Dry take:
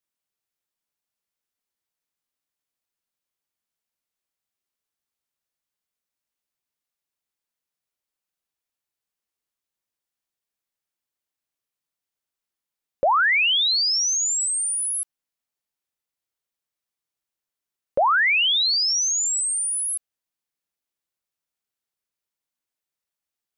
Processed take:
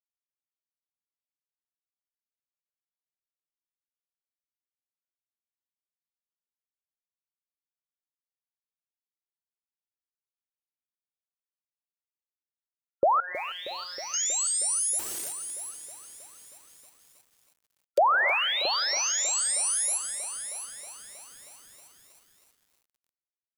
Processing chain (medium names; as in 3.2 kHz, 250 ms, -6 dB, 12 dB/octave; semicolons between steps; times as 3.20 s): in parallel at 0 dB: gain riding within 3 dB 0.5 s; on the sum: gated-style reverb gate 310 ms rising, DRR 11 dB; bit crusher 11-bit; loudest bins only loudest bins 64; delay 677 ms -12 dB; 14.99–17.98 s: integer overflow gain 22 dB; high-pass 48 Hz 6 dB/octave; peaking EQ 370 Hz +11.5 dB 0.62 oct; 13.20–14.14 s: feedback comb 180 Hz, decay 0.41 s, harmonics all, mix 100%; dynamic bell 4 kHz, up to -5 dB, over -29 dBFS, Q 0.72; bit-crushed delay 317 ms, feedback 80%, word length 6-bit, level -14 dB; trim -9 dB